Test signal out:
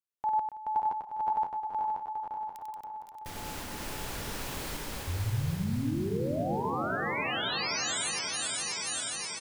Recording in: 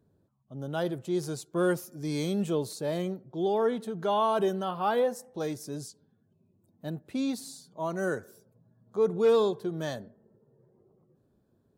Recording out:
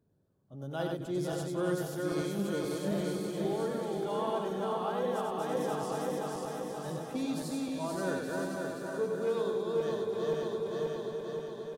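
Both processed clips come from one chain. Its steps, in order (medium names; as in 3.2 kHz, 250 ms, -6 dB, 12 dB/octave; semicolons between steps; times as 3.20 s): backward echo that repeats 265 ms, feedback 76%, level -2.5 dB; gain riding within 3 dB 0.5 s; multi-tap echo 56/95/277/510/802/875 ms -19.5/-4/-14/-12/-15/-8 dB; trim -8.5 dB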